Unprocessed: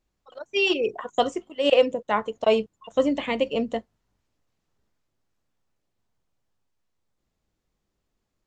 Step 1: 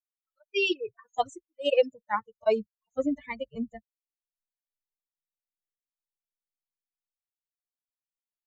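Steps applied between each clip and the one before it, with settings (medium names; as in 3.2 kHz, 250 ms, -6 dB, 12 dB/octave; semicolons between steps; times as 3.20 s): expander on every frequency bin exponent 3; trim -1 dB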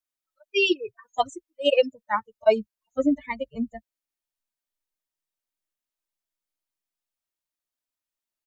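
comb 3.2 ms, depth 39%; trim +4 dB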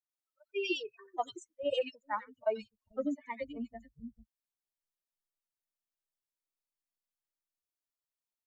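compression 2:1, threshold -23 dBFS, peak gain reduction 6.5 dB; three bands offset in time mids, highs, lows 90/440 ms, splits 200/2300 Hz; trim -7.5 dB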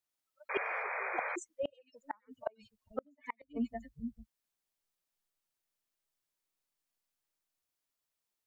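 inverted gate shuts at -28 dBFS, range -37 dB; painted sound noise, 0.49–1.36 s, 440–2500 Hz -43 dBFS; trim +5.5 dB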